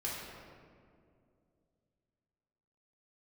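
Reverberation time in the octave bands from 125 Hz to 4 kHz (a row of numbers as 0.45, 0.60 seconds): 3.2, 3.0, 2.7, 2.0, 1.6, 1.1 seconds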